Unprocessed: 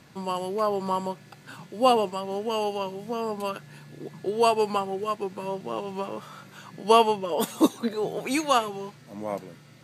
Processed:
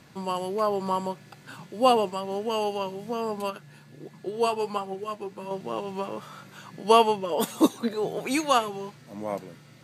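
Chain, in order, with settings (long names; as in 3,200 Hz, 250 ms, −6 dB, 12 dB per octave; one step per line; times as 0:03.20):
0:03.50–0:05.51: flanger 1.5 Hz, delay 3.6 ms, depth 6.3 ms, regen +59%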